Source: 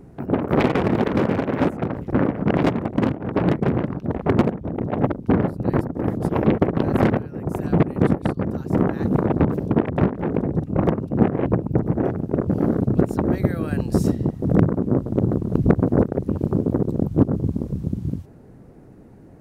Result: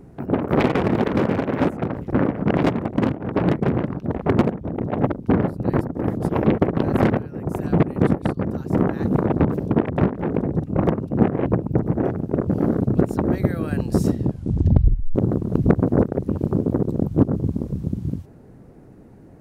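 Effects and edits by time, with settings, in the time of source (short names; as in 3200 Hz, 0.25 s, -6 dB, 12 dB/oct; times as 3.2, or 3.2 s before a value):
14.19 tape stop 0.96 s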